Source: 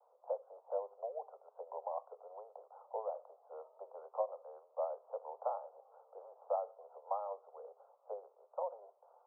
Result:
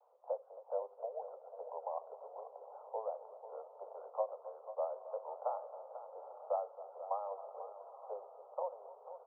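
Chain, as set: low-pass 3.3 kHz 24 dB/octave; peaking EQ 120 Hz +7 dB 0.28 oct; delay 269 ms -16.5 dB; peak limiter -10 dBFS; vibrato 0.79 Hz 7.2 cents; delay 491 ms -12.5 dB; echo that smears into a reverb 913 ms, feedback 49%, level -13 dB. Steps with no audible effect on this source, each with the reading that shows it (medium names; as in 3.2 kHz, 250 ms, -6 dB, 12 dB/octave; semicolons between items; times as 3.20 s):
low-pass 3.3 kHz: input has nothing above 1.4 kHz; peaking EQ 120 Hz: input has nothing below 380 Hz; peak limiter -10 dBFS: peak at its input -23.0 dBFS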